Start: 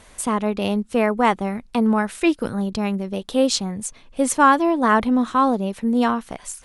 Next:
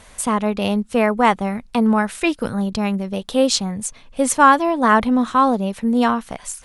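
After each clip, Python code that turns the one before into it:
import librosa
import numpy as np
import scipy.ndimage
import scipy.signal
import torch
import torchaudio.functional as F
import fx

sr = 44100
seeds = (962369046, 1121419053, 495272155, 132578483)

y = fx.peak_eq(x, sr, hz=340.0, db=-5.5, octaves=0.55)
y = y * librosa.db_to_amplitude(3.0)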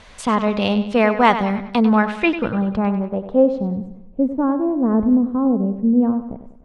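y = fx.filter_sweep_lowpass(x, sr, from_hz=4500.0, to_hz=360.0, start_s=1.79, end_s=3.93, q=1.1)
y = fx.echo_bbd(y, sr, ms=97, stages=4096, feedback_pct=45, wet_db=-11.0)
y = y * librosa.db_to_amplitude(1.0)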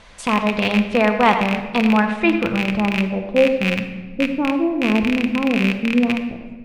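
y = fx.rattle_buzz(x, sr, strikes_db=-22.0, level_db=-7.0)
y = fx.room_shoebox(y, sr, seeds[0], volume_m3=1200.0, walls='mixed', distance_m=0.78)
y = y * librosa.db_to_amplitude(-1.5)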